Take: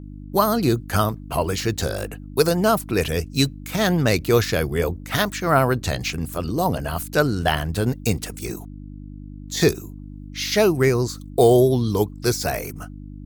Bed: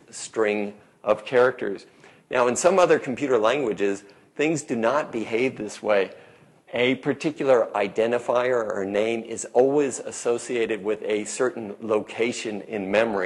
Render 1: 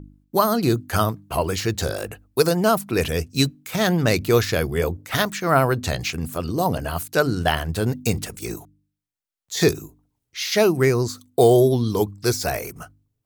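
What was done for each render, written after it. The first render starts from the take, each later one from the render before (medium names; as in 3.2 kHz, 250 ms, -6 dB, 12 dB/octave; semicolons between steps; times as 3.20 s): de-hum 50 Hz, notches 6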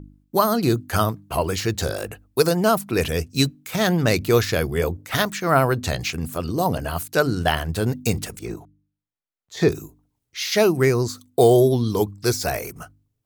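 8.39–9.72 s: low-pass 1.7 kHz 6 dB/octave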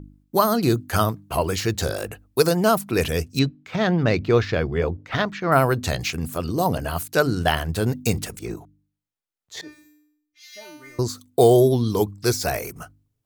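3.39–5.52 s: distance through air 210 m; 9.61–10.99 s: feedback comb 300 Hz, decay 0.65 s, mix 100%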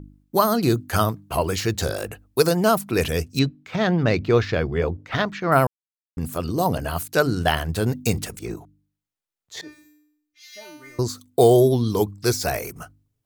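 5.67–6.17 s: mute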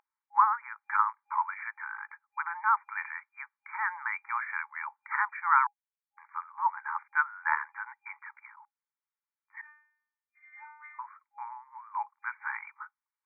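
FFT band-pass 820–2400 Hz; tilt EQ -3 dB/octave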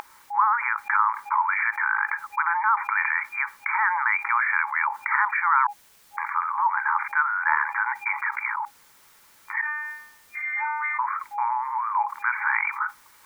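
level flattener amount 70%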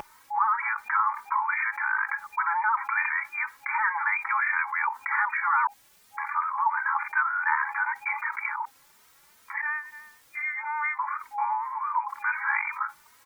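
vibrato 7 Hz 24 cents; endless flanger 3 ms +2.7 Hz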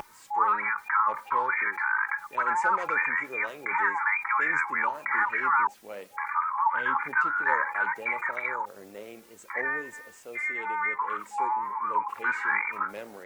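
add bed -20 dB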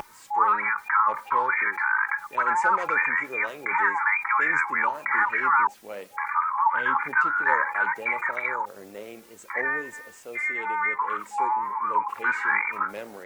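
trim +3 dB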